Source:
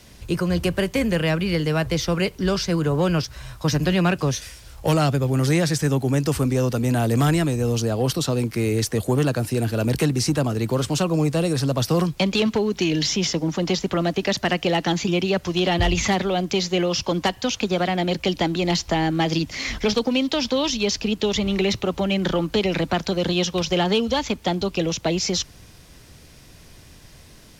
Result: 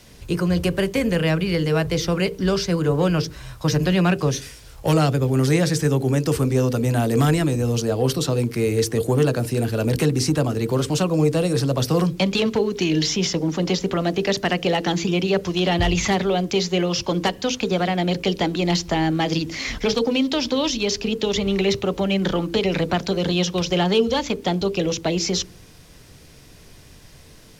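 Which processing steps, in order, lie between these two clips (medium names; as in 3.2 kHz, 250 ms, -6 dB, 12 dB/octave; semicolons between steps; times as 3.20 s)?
on a send: resonant low-pass 440 Hz, resonance Q 5 + reverberation RT60 0.30 s, pre-delay 5 ms, DRR 12.5 dB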